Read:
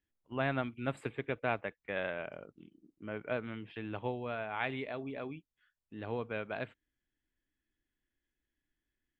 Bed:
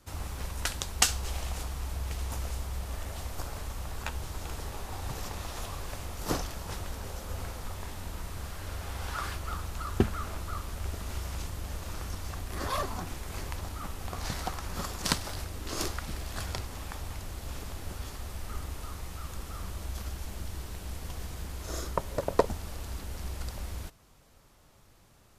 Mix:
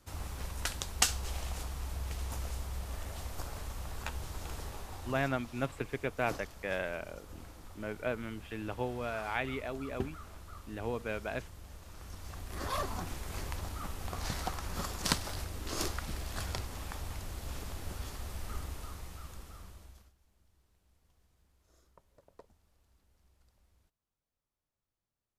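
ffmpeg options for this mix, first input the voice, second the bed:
ffmpeg -i stem1.wav -i stem2.wav -filter_complex "[0:a]adelay=4750,volume=1dB[link_01];[1:a]volume=7dB,afade=type=out:start_time=4.59:duration=0.82:silence=0.354813,afade=type=in:start_time=11.93:duration=1.03:silence=0.298538,afade=type=out:start_time=18.51:duration=1.62:silence=0.0316228[link_02];[link_01][link_02]amix=inputs=2:normalize=0" out.wav

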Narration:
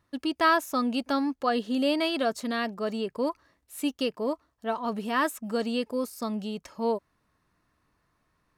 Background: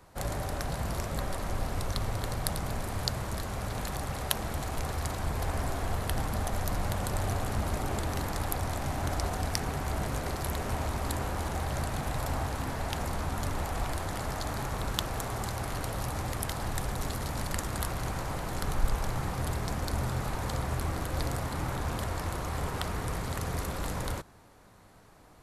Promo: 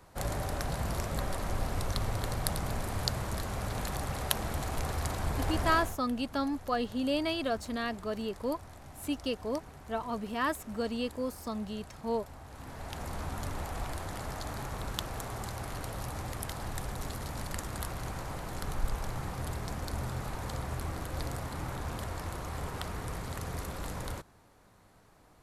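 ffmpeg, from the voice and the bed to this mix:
ffmpeg -i stem1.wav -i stem2.wav -filter_complex "[0:a]adelay=5250,volume=-5dB[link_01];[1:a]volume=12dB,afade=type=out:start_time=5.76:duration=0.21:silence=0.149624,afade=type=in:start_time=12.44:duration=0.77:silence=0.237137[link_02];[link_01][link_02]amix=inputs=2:normalize=0" out.wav

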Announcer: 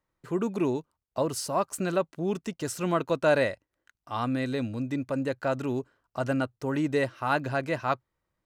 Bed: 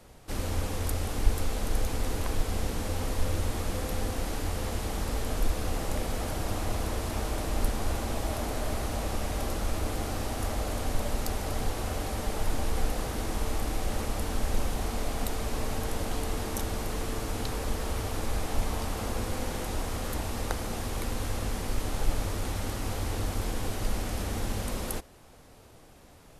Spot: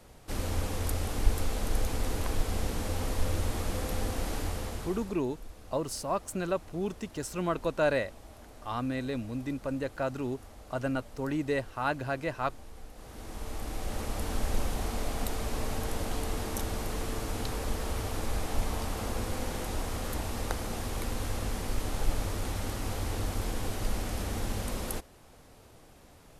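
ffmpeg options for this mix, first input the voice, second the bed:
ffmpeg -i stem1.wav -i stem2.wav -filter_complex "[0:a]adelay=4550,volume=-4dB[link_01];[1:a]volume=16.5dB,afade=type=out:start_time=4.39:duration=0.79:silence=0.125893,afade=type=in:start_time=12.93:duration=1.41:silence=0.133352[link_02];[link_01][link_02]amix=inputs=2:normalize=0" out.wav

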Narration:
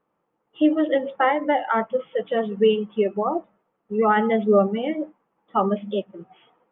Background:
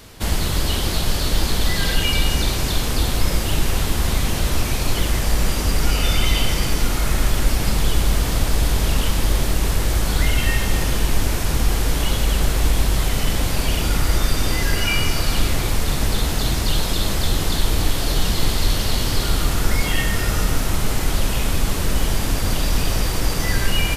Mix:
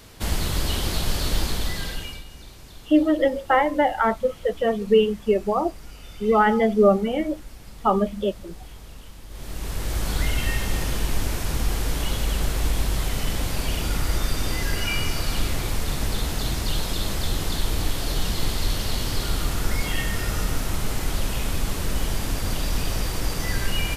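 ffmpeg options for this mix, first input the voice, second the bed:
ffmpeg -i stem1.wav -i stem2.wav -filter_complex "[0:a]adelay=2300,volume=1dB[link_01];[1:a]volume=14dB,afade=type=out:start_time=1.35:duration=0.89:silence=0.105925,afade=type=in:start_time=9.29:duration=0.79:silence=0.125893[link_02];[link_01][link_02]amix=inputs=2:normalize=0" out.wav

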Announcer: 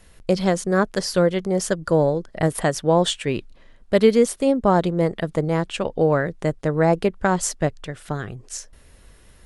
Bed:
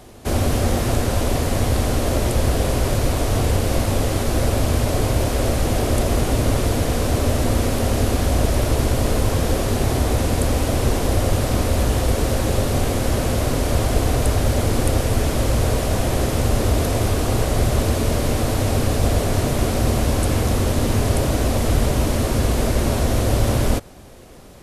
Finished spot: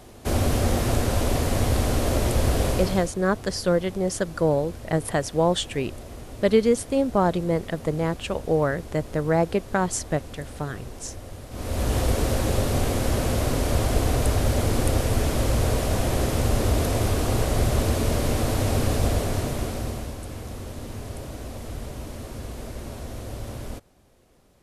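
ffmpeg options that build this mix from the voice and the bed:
ffmpeg -i stem1.wav -i stem2.wav -filter_complex "[0:a]adelay=2500,volume=-3.5dB[link_01];[1:a]volume=14dB,afade=type=out:start_time=2.67:duration=0.45:silence=0.133352,afade=type=in:start_time=11.5:duration=0.47:silence=0.141254,afade=type=out:start_time=18.94:duration=1.23:silence=0.223872[link_02];[link_01][link_02]amix=inputs=2:normalize=0" out.wav

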